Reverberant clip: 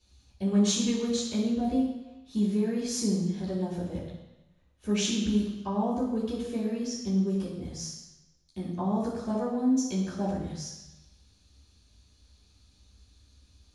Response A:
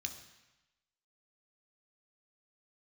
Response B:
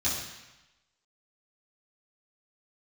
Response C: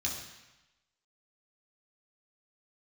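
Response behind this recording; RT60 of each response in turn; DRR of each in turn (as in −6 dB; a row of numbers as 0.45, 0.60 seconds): B; 1.0, 1.0, 1.0 seconds; 4.5, −11.0, −3.0 decibels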